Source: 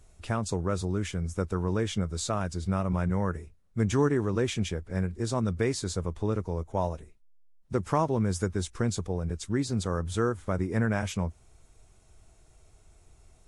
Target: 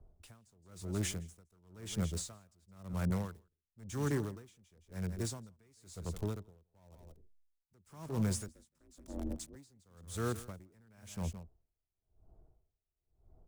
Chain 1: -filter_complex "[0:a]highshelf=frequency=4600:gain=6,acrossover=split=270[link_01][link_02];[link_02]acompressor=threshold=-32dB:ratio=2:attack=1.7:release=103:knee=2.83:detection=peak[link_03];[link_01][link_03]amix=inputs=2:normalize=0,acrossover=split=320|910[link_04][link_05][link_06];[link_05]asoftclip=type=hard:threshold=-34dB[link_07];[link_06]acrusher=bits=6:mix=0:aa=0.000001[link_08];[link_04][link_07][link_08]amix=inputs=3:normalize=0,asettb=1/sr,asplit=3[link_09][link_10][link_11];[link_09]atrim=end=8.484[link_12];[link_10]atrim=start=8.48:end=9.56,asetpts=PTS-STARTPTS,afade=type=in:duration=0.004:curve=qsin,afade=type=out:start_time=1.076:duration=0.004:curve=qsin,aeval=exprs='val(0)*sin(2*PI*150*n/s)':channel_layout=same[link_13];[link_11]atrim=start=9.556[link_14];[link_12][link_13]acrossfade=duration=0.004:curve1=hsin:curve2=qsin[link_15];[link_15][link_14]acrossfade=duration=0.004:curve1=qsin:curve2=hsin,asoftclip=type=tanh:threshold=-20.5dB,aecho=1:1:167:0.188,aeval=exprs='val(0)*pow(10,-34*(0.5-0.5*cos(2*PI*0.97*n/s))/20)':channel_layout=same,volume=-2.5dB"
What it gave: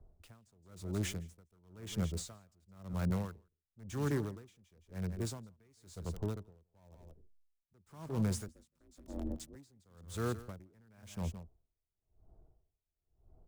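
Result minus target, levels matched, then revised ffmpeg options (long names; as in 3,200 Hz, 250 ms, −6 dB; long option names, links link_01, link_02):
8,000 Hz band −3.5 dB
-filter_complex "[0:a]highshelf=frequency=4600:gain=15.5,acrossover=split=270[link_01][link_02];[link_02]acompressor=threshold=-32dB:ratio=2:attack=1.7:release=103:knee=2.83:detection=peak[link_03];[link_01][link_03]amix=inputs=2:normalize=0,acrossover=split=320|910[link_04][link_05][link_06];[link_05]asoftclip=type=hard:threshold=-34dB[link_07];[link_06]acrusher=bits=6:mix=0:aa=0.000001[link_08];[link_04][link_07][link_08]amix=inputs=3:normalize=0,asettb=1/sr,asplit=3[link_09][link_10][link_11];[link_09]atrim=end=8.484[link_12];[link_10]atrim=start=8.48:end=9.56,asetpts=PTS-STARTPTS,afade=type=in:duration=0.004:curve=qsin,afade=type=out:start_time=1.076:duration=0.004:curve=qsin,aeval=exprs='val(0)*sin(2*PI*150*n/s)':channel_layout=same[link_13];[link_11]atrim=start=9.556[link_14];[link_12][link_13]acrossfade=duration=0.004:curve1=hsin:curve2=qsin[link_15];[link_15][link_14]acrossfade=duration=0.004:curve1=qsin:curve2=hsin,asoftclip=type=tanh:threshold=-20.5dB,aecho=1:1:167:0.188,aeval=exprs='val(0)*pow(10,-34*(0.5-0.5*cos(2*PI*0.97*n/s))/20)':channel_layout=same,volume=-2.5dB"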